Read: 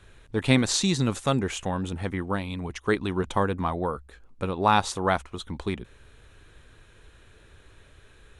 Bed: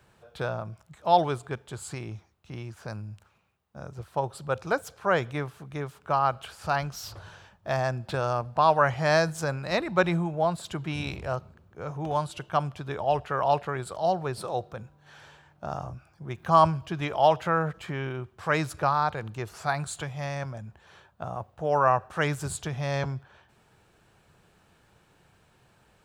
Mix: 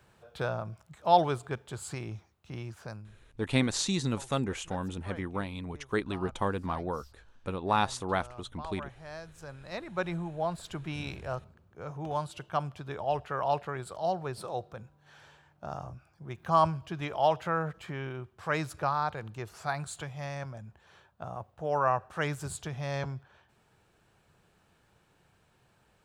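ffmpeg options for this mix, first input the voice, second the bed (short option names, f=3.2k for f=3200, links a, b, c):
-filter_complex "[0:a]adelay=3050,volume=-6dB[a];[1:a]volume=15dB,afade=t=out:st=2.74:d=0.45:silence=0.1,afade=t=in:st=9.25:d=1.45:silence=0.149624[b];[a][b]amix=inputs=2:normalize=0"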